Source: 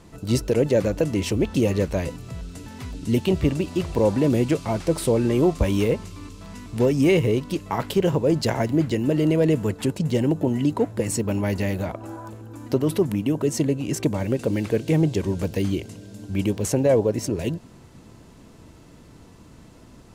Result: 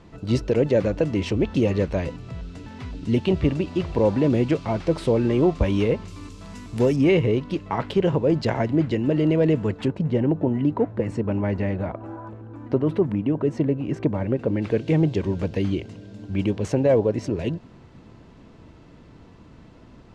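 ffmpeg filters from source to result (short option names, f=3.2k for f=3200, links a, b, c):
-af "asetnsamples=n=441:p=0,asendcmd='6.08 lowpass f 9100;6.96 lowpass f 3500;9.88 lowpass f 1900;14.62 lowpass f 3700',lowpass=4k"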